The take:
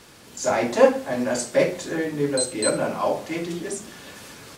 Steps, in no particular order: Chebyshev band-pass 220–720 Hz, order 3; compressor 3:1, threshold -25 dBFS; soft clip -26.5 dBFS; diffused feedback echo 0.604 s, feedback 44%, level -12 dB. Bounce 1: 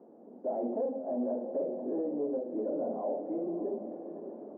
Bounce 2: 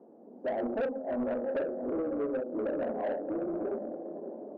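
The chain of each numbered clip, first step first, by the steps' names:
compressor > diffused feedback echo > soft clip > Chebyshev band-pass; diffused feedback echo > compressor > Chebyshev band-pass > soft clip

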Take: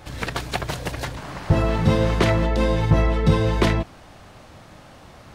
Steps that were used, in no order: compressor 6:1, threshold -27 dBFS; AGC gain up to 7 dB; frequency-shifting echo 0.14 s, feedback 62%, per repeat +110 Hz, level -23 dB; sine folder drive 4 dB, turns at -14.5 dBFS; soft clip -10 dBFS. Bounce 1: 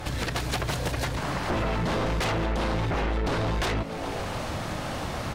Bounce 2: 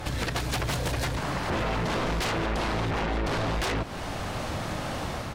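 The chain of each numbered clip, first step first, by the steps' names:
frequency-shifting echo > sine folder > soft clip > AGC > compressor; AGC > soft clip > sine folder > frequency-shifting echo > compressor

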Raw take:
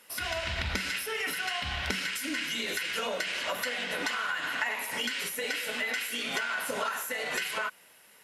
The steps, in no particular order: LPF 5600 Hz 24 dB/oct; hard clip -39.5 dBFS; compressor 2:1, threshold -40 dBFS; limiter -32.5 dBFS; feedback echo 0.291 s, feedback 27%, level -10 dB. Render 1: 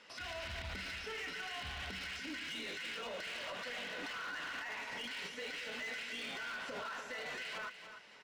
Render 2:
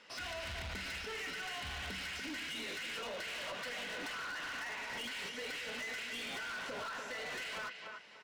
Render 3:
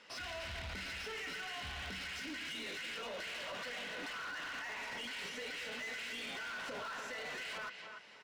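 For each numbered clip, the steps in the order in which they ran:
compressor > limiter > LPF > hard clip > feedback echo; LPF > compressor > feedback echo > hard clip > limiter; LPF > limiter > feedback echo > hard clip > compressor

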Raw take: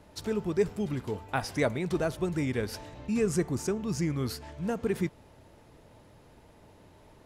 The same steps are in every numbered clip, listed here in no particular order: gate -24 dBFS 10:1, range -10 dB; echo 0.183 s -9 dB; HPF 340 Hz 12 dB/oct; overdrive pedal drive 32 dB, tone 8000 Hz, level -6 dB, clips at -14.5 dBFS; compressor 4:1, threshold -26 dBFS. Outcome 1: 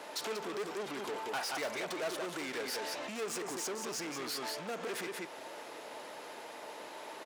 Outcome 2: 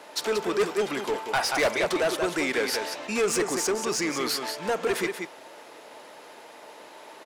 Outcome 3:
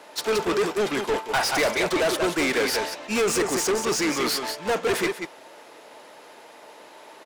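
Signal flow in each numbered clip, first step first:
echo > overdrive pedal > compressor > HPF > gate; HPF > gate > compressor > echo > overdrive pedal; HPF > compressor > echo > overdrive pedal > gate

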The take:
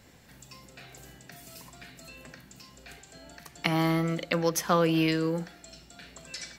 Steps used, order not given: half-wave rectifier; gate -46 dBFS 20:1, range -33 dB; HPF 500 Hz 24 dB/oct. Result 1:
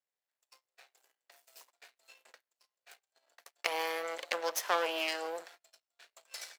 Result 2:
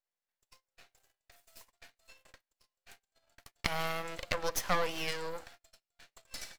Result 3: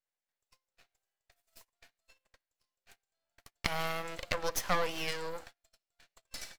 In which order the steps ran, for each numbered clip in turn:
gate > half-wave rectifier > HPF; gate > HPF > half-wave rectifier; HPF > gate > half-wave rectifier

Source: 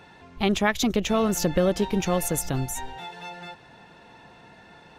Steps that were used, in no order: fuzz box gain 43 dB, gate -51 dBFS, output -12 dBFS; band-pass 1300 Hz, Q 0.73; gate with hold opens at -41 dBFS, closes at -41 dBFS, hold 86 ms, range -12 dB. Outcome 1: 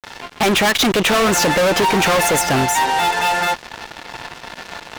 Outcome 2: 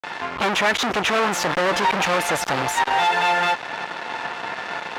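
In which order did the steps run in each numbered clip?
gate with hold > band-pass > fuzz box; gate with hold > fuzz box > band-pass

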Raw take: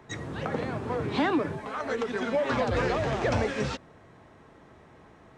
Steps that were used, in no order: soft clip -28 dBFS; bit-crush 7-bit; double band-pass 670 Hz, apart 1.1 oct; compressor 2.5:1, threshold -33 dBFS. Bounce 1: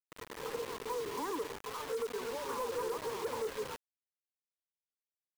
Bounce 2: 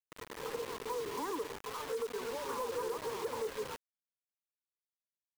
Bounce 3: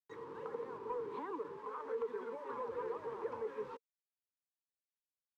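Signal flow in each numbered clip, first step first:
double band-pass > bit-crush > soft clip > compressor; double band-pass > bit-crush > compressor > soft clip; compressor > bit-crush > double band-pass > soft clip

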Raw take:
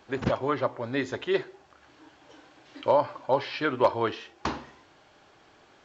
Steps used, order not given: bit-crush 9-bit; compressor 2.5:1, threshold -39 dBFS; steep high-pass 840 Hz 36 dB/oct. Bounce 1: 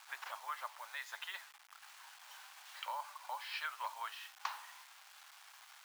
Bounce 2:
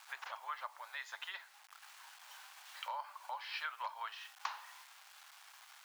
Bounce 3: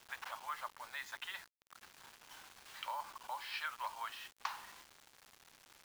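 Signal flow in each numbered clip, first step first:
compressor > bit-crush > steep high-pass; bit-crush > compressor > steep high-pass; compressor > steep high-pass > bit-crush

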